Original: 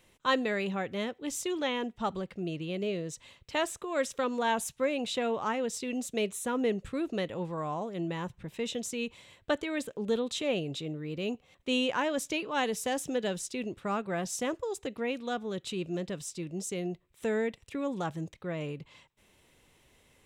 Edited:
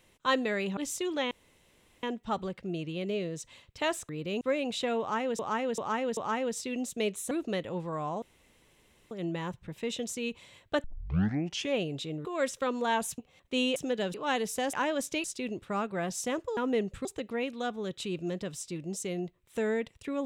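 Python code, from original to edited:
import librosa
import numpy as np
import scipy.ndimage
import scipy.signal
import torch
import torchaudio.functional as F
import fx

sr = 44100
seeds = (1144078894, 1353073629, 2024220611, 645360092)

y = fx.edit(x, sr, fx.cut(start_s=0.77, length_s=0.45),
    fx.insert_room_tone(at_s=1.76, length_s=0.72),
    fx.swap(start_s=3.82, length_s=0.93, other_s=11.01, other_length_s=0.32),
    fx.repeat(start_s=5.34, length_s=0.39, count=4),
    fx.move(start_s=6.48, length_s=0.48, to_s=14.72),
    fx.insert_room_tone(at_s=7.87, length_s=0.89),
    fx.tape_start(start_s=9.6, length_s=0.89),
    fx.swap(start_s=11.91, length_s=0.51, other_s=13.01, other_length_s=0.38), tone=tone)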